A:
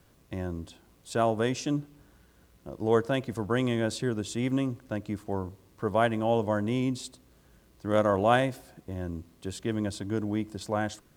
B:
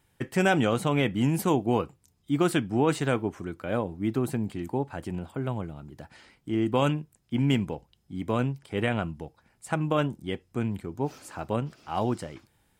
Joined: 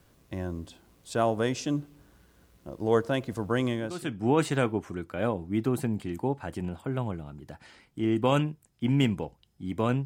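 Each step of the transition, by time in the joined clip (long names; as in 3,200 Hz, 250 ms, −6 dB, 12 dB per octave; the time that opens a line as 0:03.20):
A
0:03.98: continue with B from 0:02.48, crossfade 0.62 s quadratic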